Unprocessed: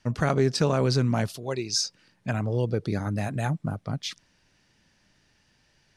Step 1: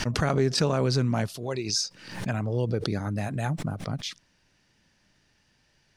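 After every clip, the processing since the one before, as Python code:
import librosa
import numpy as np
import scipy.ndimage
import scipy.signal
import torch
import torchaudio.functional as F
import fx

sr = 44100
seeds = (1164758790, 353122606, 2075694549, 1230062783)

y = fx.pre_swell(x, sr, db_per_s=80.0)
y = y * librosa.db_to_amplitude(-1.5)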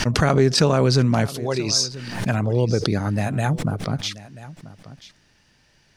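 y = x + 10.0 ** (-17.5 / 20.0) * np.pad(x, (int(985 * sr / 1000.0), 0))[:len(x)]
y = y * librosa.db_to_amplitude(7.0)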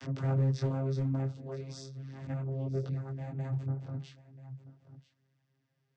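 y = fx.vocoder(x, sr, bands=16, carrier='saw', carrier_hz=134.0)
y = np.clip(y, -10.0 ** (-12.0 / 20.0), 10.0 ** (-12.0 / 20.0))
y = fx.detune_double(y, sr, cents=14)
y = y * librosa.db_to_amplitude(-8.0)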